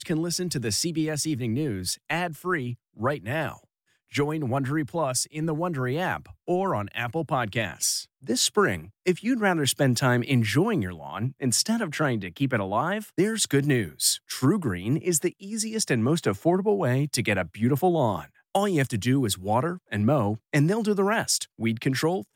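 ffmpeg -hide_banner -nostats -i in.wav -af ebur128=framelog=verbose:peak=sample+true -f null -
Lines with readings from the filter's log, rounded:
Integrated loudness:
  I:         -25.6 LUFS
  Threshold: -35.7 LUFS
Loudness range:
  LRA:         4.2 LU
  Threshold: -45.7 LUFS
  LRA low:   -28.5 LUFS
  LRA high:  -24.4 LUFS
Sample peak:
  Peak:       -9.3 dBFS
True peak:
  Peak:       -9.1 dBFS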